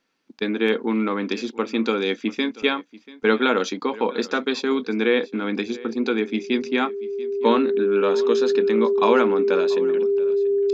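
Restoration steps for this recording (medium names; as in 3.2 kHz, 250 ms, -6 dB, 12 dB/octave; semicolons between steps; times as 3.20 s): band-stop 400 Hz, Q 30; inverse comb 687 ms -20 dB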